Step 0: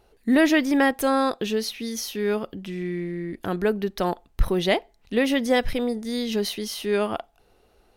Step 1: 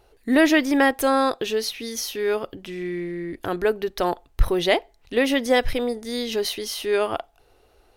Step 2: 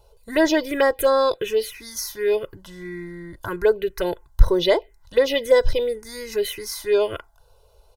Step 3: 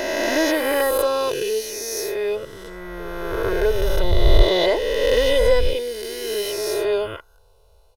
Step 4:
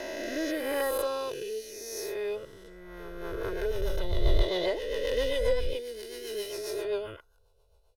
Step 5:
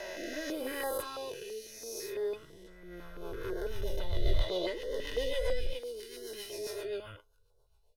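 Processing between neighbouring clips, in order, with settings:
peaking EQ 200 Hz -14.5 dB 0.35 oct; trim +2.5 dB
comb 2 ms, depth 78%; touch-sensitive phaser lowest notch 300 Hz, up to 2.7 kHz, full sweep at -12 dBFS; trim +1 dB
reverse spectral sustain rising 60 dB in 2.93 s; trim -4.5 dB
rotary cabinet horn 0.8 Hz, later 7.5 Hz, at 2.69 s; trim -9 dB
flange 0.36 Hz, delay 5 ms, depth 5.7 ms, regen +53%; step-sequenced notch 6 Hz 280–2500 Hz; trim +1 dB

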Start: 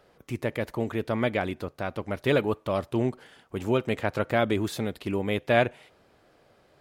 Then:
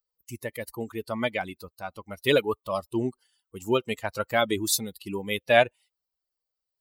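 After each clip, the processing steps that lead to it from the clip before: expander on every frequency bin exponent 2; tone controls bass -9 dB, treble +14 dB; trim +5.5 dB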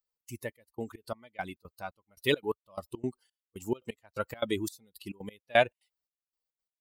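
trance gate "xx.xxx...xx.x..." 173 bpm -24 dB; trim -3.5 dB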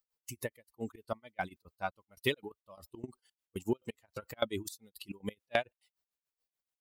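compression 10:1, threshold -31 dBFS, peak gain reduction 15 dB; tremolo 7 Hz, depth 96%; trim +5 dB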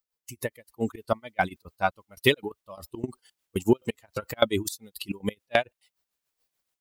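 level rider gain up to 11.5 dB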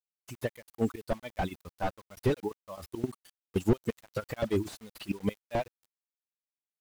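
bit crusher 9-bit; slew-rate limiter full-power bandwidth 34 Hz

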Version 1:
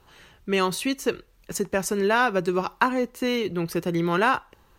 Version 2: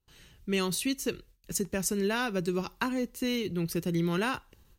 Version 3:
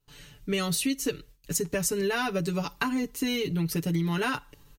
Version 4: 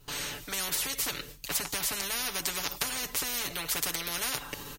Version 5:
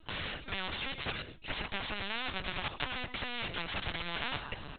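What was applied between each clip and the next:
gate with hold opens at -47 dBFS; peaking EQ 930 Hz -14 dB 2.8 oct; trim +1 dB
comb 6.9 ms, depth 93%; compression 4:1, threshold -28 dBFS, peak gain reduction 6.5 dB; trim +3.5 dB
spectrum-flattening compressor 10:1; trim +4.5 dB
LPC vocoder at 8 kHz pitch kept

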